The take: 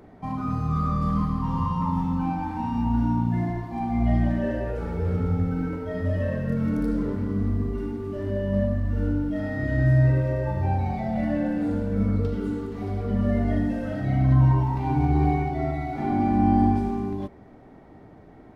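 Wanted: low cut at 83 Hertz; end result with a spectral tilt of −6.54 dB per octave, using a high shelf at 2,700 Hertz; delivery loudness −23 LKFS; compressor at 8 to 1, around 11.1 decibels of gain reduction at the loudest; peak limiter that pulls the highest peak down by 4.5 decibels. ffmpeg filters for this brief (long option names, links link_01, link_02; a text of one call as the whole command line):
ffmpeg -i in.wav -af "highpass=83,highshelf=frequency=2700:gain=4.5,acompressor=threshold=-27dB:ratio=8,volume=10dB,alimiter=limit=-14dB:level=0:latency=1" out.wav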